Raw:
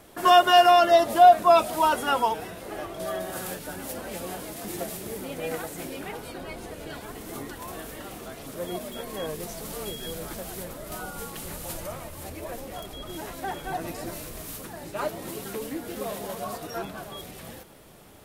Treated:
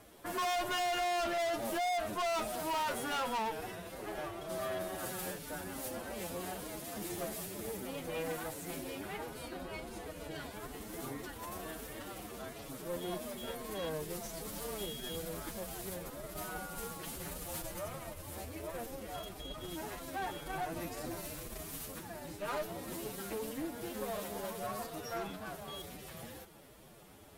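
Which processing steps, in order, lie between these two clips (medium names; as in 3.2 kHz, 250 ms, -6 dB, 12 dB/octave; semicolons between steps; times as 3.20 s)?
valve stage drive 30 dB, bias 0.65; time stretch by phase-locked vocoder 1.5×; trim -2 dB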